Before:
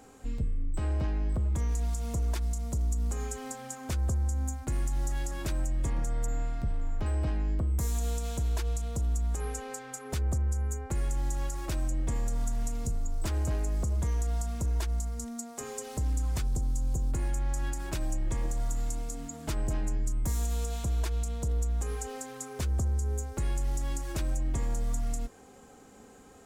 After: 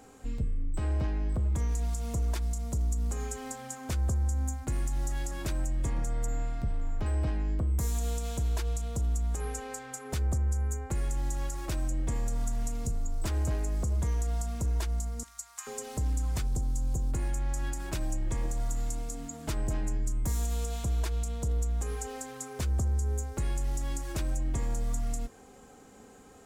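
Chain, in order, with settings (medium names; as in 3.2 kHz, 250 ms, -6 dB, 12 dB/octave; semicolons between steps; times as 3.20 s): 15.23–15.67 s: steep high-pass 970 Hz 36 dB/octave; two-slope reverb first 0.24 s, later 1.6 s, from -18 dB, DRR 18.5 dB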